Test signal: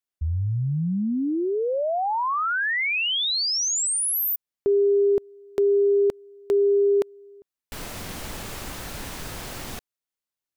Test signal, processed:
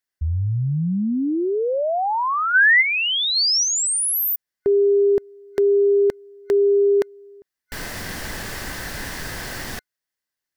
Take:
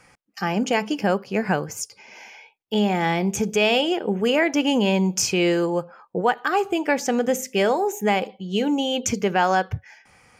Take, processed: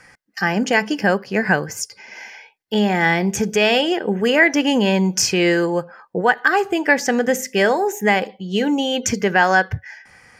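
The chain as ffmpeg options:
-af "superequalizer=11b=2.51:14b=1.41,volume=1.41"

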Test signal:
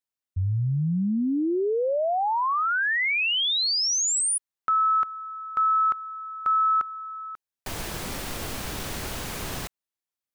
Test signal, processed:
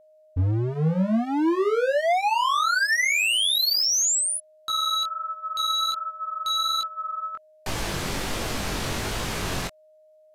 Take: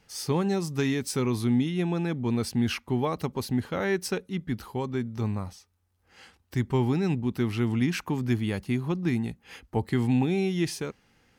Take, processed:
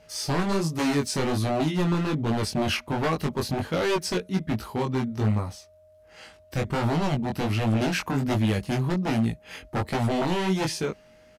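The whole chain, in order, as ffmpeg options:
-filter_complex "[0:a]acrossover=split=8100[s0][s1];[s1]acompressor=threshold=0.00562:ratio=4:attack=1:release=60[s2];[s0][s2]amix=inputs=2:normalize=0,aeval=exprs='0.0631*(abs(mod(val(0)/0.0631+3,4)-2)-1)':c=same,flanger=delay=18:depth=4.6:speed=1.3,aresample=32000,aresample=44100,aeval=exprs='val(0)+0.000891*sin(2*PI*620*n/s)':c=same,volume=2.51"

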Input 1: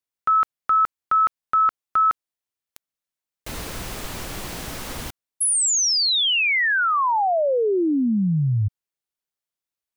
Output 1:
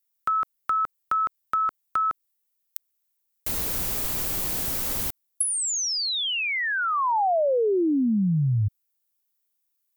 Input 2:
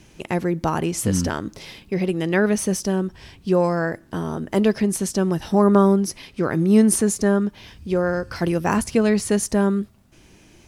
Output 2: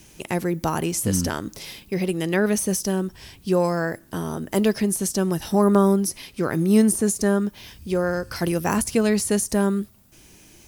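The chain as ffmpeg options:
-filter_complex "[0:a]aemphasis=mode=production:type=50fm,acrossover=split=900[s0][s1];[s1]acompressor=threshold=0.0501:ratio=12:attack=63:release=61:knee=6:detection=rms[s2];[s0][s2]amix=inputs=2:normalize=0,volume=0.841"

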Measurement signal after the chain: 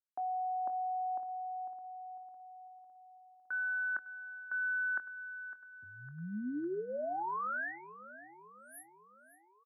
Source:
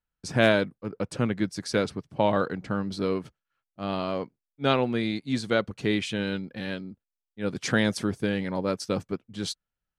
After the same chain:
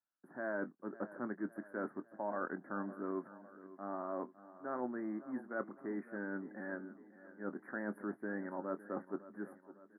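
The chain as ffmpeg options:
-filter_complex "[0:a]highpass=f=250:w=0.5412,highpass=f=250:w=1.3066,equalizer=f=470:w=7.6:g=-14.5,areverse,acompressor=threshold=0.0251:ratio=6,areverse,asplit=2[s0][s1];[s1]adelay=24,volume=0.224[s2];[s0][s2]amix=inputs=2:normalize=0,asplit=2[s3][s4];[s4]aecho=0:1:556|1112|1668|2224|2780:0.158|0.0872|0.0479|0.0264|0.0145[s5];[s3][s5]amix=inputs=2:normalize=0,aresample=22050,aresample=44100,asuperstop=centerf=4800:order=20:qfactor=0.52,volume=0.631"

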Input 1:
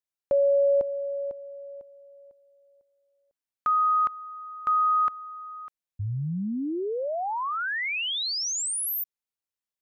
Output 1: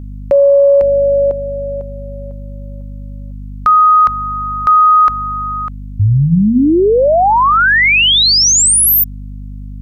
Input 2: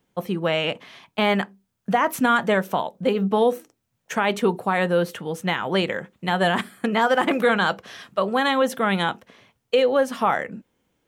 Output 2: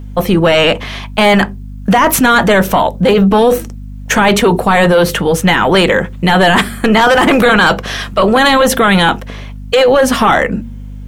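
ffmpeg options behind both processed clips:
-af "aeval=exprs='val(0)+0.00562*(sin(2*PI*50*n/s)+sin(2*PI*2*50*n/s)/2+sin(2*PI*3*50*n/s)/3+sin(2*PI*4*50*n/s)/4+sin(2*PI*5*50*n/s)/5)':c=same,apsyclip=15.8,bandreject=f=76.89:t=h:w=4,bandreject=f=153.78:t=h:w=4,bandreject=f=230.67:t=h:w=4,volume=0.596"

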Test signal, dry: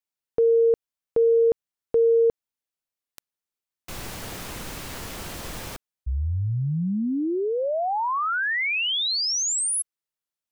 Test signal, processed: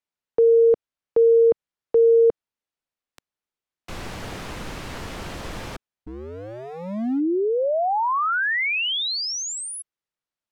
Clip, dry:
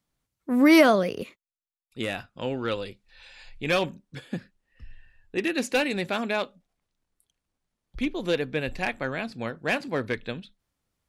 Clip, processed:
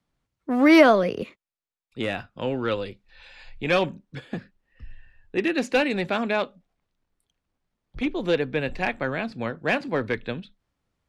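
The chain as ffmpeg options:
-filter_complex "[0:a]aemphasis=mode=reproduction:type=50fm,acrossover=split=230|1800[s0][s1][s2];[s0]aeval=exprs='0.0224*(abs(mod(val(0)/0.0224+3,4)-2)-1)':c=same[s3];[s3][s1][s2]amix=inputs=3:normalize=0,volume=1.41"

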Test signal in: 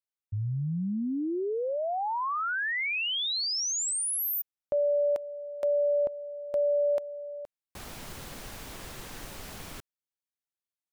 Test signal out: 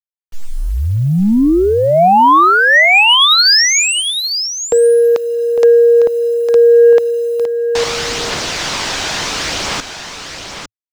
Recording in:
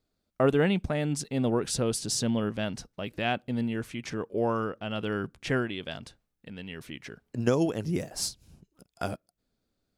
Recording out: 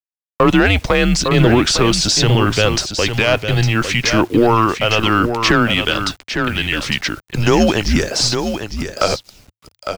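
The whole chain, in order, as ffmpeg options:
-filter_complex "[0:a]highpass=f=570:p=1,aemphasis=mode=production:type=cd,acrossover=split=2500[s0][s1];[s1]acompressor=threshold=0.0224:ratio=4:attack=1:release=60[s2];[s0][s2]amix=inputs=2:normalize=0,lowpass=f=6100:w=0.5412,lowpass=f=6100:w=1.3066,asplit=2[s3][s4];[s4]acompressor=threshold=0.0126:ratio=20:attack=0.86:release=108:knee=6:detection=rms,volume=1.26[s5];[s3][s5]amix=inputs=2:normalize=0,aphaser=in_gain=1:out_gain=1:delay=1.3:decay=0.25:speed=0.72:type=triangular,acrusher=bits=9:mix=0:aa=0.000001,asoftclip=type=tanh:threshold=0.106,afreqshift=-110,asplit=2[s6][s7];[s7]aecho=0:1:855:0.376[s8];[s6][s8]amix=inputs=2:normalize=0,alimiter=level_in=10:limit=0.891:release=50:level=0:latency=1,volume=0.891"

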